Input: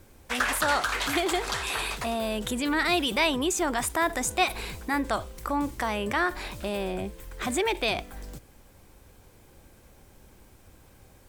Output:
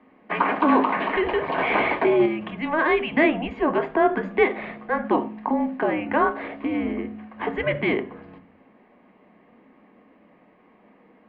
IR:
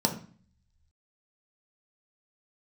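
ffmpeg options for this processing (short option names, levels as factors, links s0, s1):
-filter_complex "[0:a]highpass=f=530:t=q:w=0.5412,highpass=f=530:t=q:w=1.307,lowpass=f=3000:t=q:w=0.5176,lowpass=f=3000:t=q:w=0.7071,lowpass=f=3000:t=q:w=1.932,afreqshift=-310,asplit=2[s0][s1];[1:a]atrim=start_sample=2205,asetrate=52920,aresample=44100[s2];[s1][s2]afir=irnorm=-1:irlink=0,volume=0.422[s3];[s0][s3]amix=inputs=2:normalize=0,asettb=1/sr,asplit=3[s4][s5][s6];[s4]atrim=end=1.584[s7];[s5]atrim=start=1.58:end=2.26,asetpts=PTS-STARTPTS,afade=t=in:d=0.004:c=qsin,afade=t=out:st=0.676:d=0.004:c=qsin,acontrast=47[s8];[s6]atrim=start=2.256[s9];[s7][s8]acrossfade=d=0.004:c1=hsin:c2=qsin[s10];[s10][s9]acrossfade=d=0.004:c1=qsin:c2=hsin"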